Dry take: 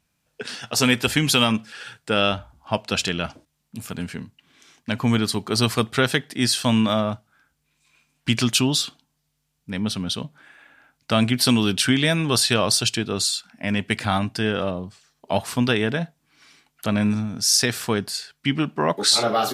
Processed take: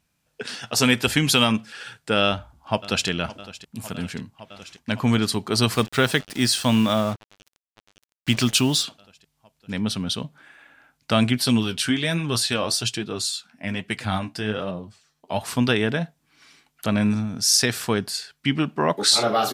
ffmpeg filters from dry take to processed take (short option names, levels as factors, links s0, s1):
-filter_complex "[0:a]asplit=2[s0][s1];[s1]afade=t=in:st=2.26:d=0.01,afade=t=out:st=3.08:d=0.01,aecho=0:1:560|1120|1680|2240|2800|3360|3920|4480|5040|5600|6160|6720:0.141254|0.120066|0.102056|0.0867475|0.0737353|0.062675|0.0532738|0.0452827|0.0384903|0.0327168|0.0278092|0.0236379[s2];[s0][s2]amix=inputs=2:normalize=0,asettb=1/sr,asplit=3[s3][s4][s5];[s3]atrim=end=5.724[s6];[s4]atrim=start=5.72:end=8.83,asetpts=PTS-STARTPTS,afade=t=in:d=0.004:c=qsin,afade=t=out:st=3.106:d=0.004:c=qsin,acrusher=bits=5:mix=0:aa=0.5[s7];[s5]atrim=start=8.826[s8];[s6][s7]acrossfade=d=0.004:c1=hsin:c2=qsin[s9];[s9][s8]acrossfade=d=0.004:c1=qsin:c2=hsin,asettb=1/sr,asplit=3[s10][s11][s12];[s10]atrim=end=11.384[s13];[s11]atrim=start=11.38:end=15.41,asetpts=PTS-STARTPTS,afade=t=in:d=0.004:c=qsin,afade=t=out:st=4.026:d=0.004:c=qsin,flanger=delay=4.8:depth=9.1:regen=41:speed=1.2:shape=triangular[s14];[s12]atrim=start=15.406[s15];[s13][s14]acrossfade=d=0.004:c1=hsin:c2=qsin[s16];[s16][s15]acrossfade=d=0.004:c1=qsin:c2=hsin"